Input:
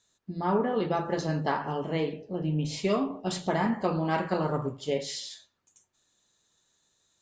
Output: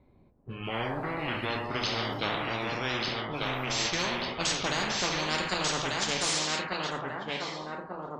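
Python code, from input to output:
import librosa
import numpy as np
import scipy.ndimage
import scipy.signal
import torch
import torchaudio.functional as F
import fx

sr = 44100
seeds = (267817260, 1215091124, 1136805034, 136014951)

p1 = fx.speed_glide(x, sr, from_pct=58, to_pct=118)
p2 = p1 + fx.echo_thinned(p1, sr, ms=1191, feedback_pct=31, hz=350.0, wet_db=-6.0, dry=0)
p3 = fx.env_lowpass(p2, sr, base_hz=420.0, full_db=-26.5)
p4 = fx.spectral_comp(p3, sr, ratio=4.0)
y = p4 * librosa.db_to_amplitude(-1.5)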